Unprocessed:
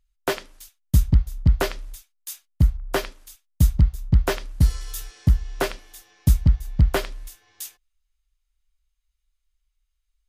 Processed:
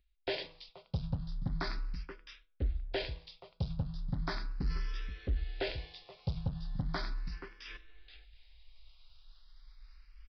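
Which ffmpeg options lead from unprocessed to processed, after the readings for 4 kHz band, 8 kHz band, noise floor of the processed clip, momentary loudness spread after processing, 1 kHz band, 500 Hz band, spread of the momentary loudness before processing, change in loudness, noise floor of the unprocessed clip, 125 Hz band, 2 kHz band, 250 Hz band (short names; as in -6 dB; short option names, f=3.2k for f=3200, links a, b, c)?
-7.5 dB, under -30 dB, -71 dBFS, 14 LU, -12.5 dB, -12.5 dB, 18 LU, -16.5 dB, -76 dBFS, -17.0 dB, -10.5 dB, -13.5 dB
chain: -filter_complex "[0:a]equalizer=f=170:w=3.1:g=5,bandreject=f=3k:w=22,asplit=2[a][b];[b]adelay=478.1,volume=-25dB,highshelf=f=4k:g=-10.8[c];[a][c]amix=inputs=2:normalize=0,areverse,acompressor=mode=upward:threshold=-29dB:ratio=2.5,areverse,bandreject=f=163.1:t=h:w=4,bandreject=f=326.2:t=h:w=4,bandreject=f=489.3:t=h:w=4,bandreject=f=652.4:t=h:w=4,bandreject=f=815.5:t=h:w=4,bandreject=f=978.6:t=h:w=4,bandreject=f=1.1417k:t=h:w=4,bandreject=f=1.3048k:t=h:w=4,bandreject=f=1.4679k:t=h:w=4,bandreject=f=1.631k:t=h:w=4,aresample=11025,asoftclip=type=hard:threshold=-16.5dB,aresample=44100,alimiter=limit=-23.5dB:level=0:latency=1:release=11,highshelf=f=3.3k:g=7.5,asplit=2[d][e];[e]afreqshift=0.37[f];[d][f]amix=inputs=2:normalize=1,volume=-2.5dB"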